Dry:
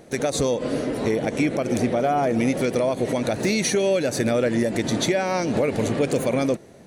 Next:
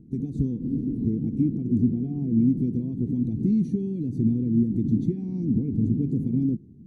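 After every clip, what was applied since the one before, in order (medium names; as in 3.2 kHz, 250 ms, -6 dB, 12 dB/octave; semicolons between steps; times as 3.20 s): inverse Chebyshev low-pass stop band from 540 Hz, stop band 40 dB; trim +4 dB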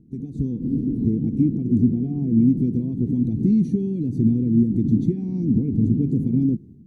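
level rider gain up to 7.5 dB; trim -3 dB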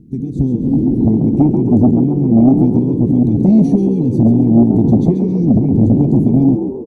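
sine folder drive 4 dB, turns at -7 dBFS; frequency-shifting echo 135 ms, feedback 46%, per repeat +59 Hz, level -8.5 dB; trim +2 dB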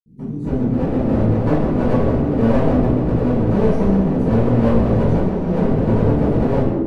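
one-sided wavefolder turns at -14.5 dBFS; reverberation RT60 1.1 s, pre-delay 59 ms; trim -6.5 dB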